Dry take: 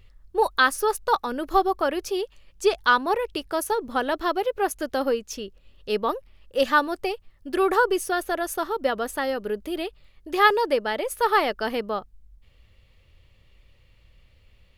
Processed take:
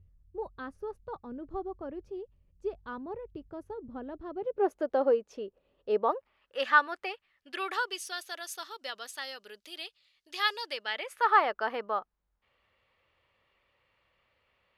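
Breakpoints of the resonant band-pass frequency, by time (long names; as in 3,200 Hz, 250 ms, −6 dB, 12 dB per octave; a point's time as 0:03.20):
resonant band-pass, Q 1.2
0:04.29 100 Hz
0:04.74 570 Hz
0:05.94 570 Hz
0:06.57 1,700 Hz
0:07.09 1,700 Hz
0:08.13 4,600 Hz
0:10.65 4,600 Hz
0:11.40 1,100 Hz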